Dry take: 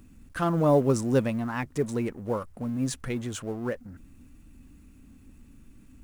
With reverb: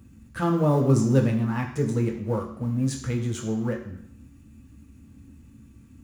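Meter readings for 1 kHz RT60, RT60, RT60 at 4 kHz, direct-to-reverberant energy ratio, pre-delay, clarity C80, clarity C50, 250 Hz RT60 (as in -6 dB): 0.70 s, 0.70 s, 0.65 s, 1.0 dB, 3 ms, 10.5 dB, 8.0 dB, 0.70 s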